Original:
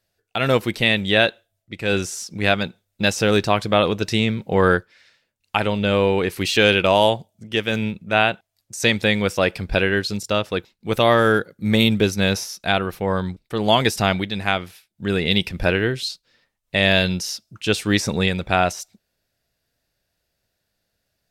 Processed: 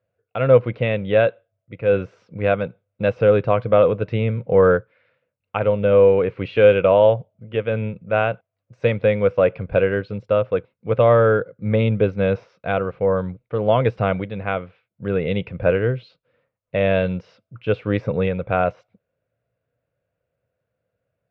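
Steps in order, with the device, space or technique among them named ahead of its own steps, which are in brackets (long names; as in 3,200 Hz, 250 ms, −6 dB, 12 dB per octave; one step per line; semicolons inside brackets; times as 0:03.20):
bass cabinet (loudspeaker in its box 84–2,100 Hz, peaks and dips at 120 Hz +7 dB, 220 Hz −5 dB, 350 Hz −7 dB, 510 Hz +10 dB, 840 Hz −7 dB, 1,800 Hz −10 dB)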